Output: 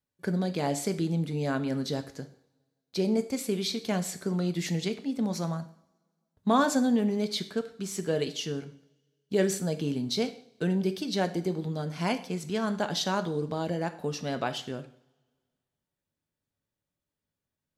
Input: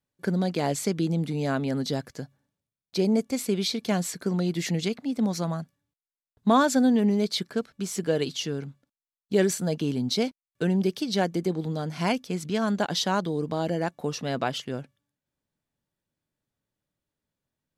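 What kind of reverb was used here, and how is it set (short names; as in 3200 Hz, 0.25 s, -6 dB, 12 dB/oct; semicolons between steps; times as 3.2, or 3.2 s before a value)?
two-slope reverb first 0.52 s, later 1.8 s, from -24 dB, DRR 8.5 dB; gain -3.5 dB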